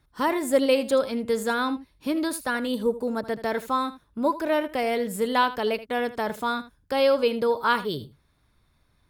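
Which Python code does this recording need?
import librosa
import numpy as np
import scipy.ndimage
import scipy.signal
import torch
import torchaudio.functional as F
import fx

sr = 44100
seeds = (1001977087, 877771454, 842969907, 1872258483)

y = fx.fix_echo_inverse(x, sr, delay_ms=79, level_db=-15.0)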